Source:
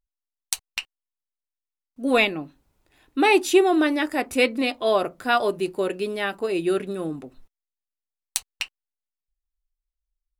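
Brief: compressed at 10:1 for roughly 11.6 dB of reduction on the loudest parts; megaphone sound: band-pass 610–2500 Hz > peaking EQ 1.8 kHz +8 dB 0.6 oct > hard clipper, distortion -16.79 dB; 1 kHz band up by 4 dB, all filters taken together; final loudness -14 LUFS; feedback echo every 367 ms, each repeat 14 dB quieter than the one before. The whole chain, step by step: peaking EQ 1 kHz +6 dB; compression 10:1, threshold -23 dBFS; band-pass 610–2500 Hz; peaking EQ 1.8 kHz +8 dB 0.6 oct; feedback delay 367 ms, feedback 20%, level -14 dB; hard clipper -20 dBFS; trim +17.5 dB

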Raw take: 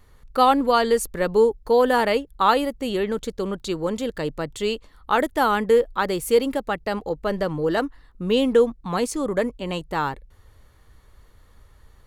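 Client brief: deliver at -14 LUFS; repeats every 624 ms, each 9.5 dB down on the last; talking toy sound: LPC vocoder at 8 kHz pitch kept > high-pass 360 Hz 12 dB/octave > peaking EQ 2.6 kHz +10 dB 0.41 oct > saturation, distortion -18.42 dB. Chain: feedback delay 624 ms, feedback 33%, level -9.5 dB; LPC vocoder at 8 kHz pitch kept; high-pass 360 Hz 12 dB/octave; peaking EQ 2.6 kHz +10 dB 0.41 oct; saturation -10.5 dBFS; trim +10.5 dB

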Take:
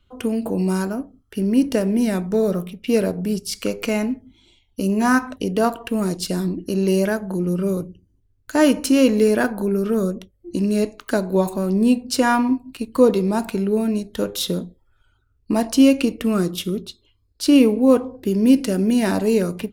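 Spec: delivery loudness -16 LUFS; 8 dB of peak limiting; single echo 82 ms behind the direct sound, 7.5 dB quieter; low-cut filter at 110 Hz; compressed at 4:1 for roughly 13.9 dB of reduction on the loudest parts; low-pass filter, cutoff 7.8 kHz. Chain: high-pass 110 Hz; low-pass 7.8 kHz; compression 4:1, threshold -26 dBFS; peak limiter -21 dBFS; delay 82 ms -7.5 dB; trim +14.5 dB

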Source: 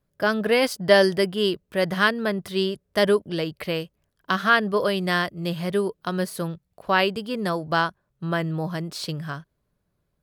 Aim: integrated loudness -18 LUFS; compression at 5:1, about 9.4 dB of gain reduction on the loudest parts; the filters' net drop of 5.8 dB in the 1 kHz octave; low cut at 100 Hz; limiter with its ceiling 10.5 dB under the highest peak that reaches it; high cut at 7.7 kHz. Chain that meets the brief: high-pass 100 Hz; low-pass 7.7 kHz; peaking EQ 1 kHz -8 dB; compression 5:1, threshold -23 dBFS; trim +12.5 dB; peak limiter -6.5 dBFS

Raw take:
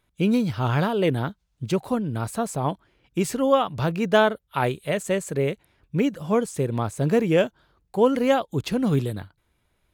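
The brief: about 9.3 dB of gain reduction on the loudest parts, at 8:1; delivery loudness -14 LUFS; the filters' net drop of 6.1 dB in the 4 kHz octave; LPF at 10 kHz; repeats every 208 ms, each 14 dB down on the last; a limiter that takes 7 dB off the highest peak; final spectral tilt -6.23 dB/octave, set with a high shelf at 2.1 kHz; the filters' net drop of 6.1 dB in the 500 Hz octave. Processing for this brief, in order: low-pass 10 kHz; peaking EQ 500 Hz -7 dB; treble shelf 2.1 kHz -3.5 dB; peaking EQ 4 kHz -5 dB; compression 8:1, threshold -28 dBFS; peak limiter -26 dBFS; feedback delay 208 ms, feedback 20%, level -14 dB; trim +21.5 dB

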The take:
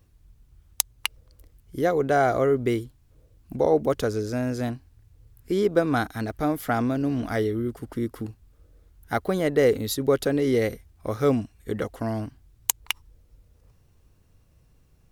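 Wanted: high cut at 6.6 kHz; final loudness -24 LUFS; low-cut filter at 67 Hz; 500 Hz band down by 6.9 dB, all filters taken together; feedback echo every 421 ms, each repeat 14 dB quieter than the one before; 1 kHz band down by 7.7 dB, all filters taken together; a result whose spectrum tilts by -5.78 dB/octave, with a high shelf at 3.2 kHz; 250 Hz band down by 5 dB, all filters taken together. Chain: high-pass 67 Hz; low-pass 6.6 kHz; peaking EQ 250 Hz -4 dB; peaking EQ 500 Hz -5 dB; peaking EQ 1 kHz -8.5 dB; treble shelf 3.2 kHz -7.5 dB; feedback delay 421 ms, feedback 20%, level -14 dB; trim +7.5 dB

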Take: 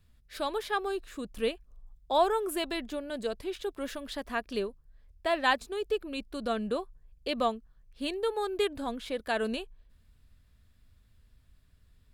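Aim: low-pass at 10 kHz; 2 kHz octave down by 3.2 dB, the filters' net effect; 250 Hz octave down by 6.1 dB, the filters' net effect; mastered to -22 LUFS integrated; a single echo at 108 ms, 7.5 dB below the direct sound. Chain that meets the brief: low-pass 10 kHz; peaking EQ 250 Hz -8 dB; peaking EQ 2 kHz -4 dB; delay 108 ms -7.5 dB; trim +12 dB

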